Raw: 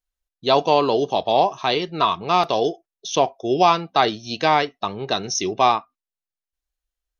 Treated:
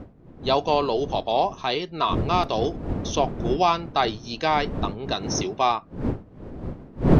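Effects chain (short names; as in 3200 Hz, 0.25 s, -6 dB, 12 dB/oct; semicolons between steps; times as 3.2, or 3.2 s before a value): wind noise 270 Hz -24 dBFS; 5.14–5.69 HPF 150 Hz 6 dB/oct; gain -4.5 dB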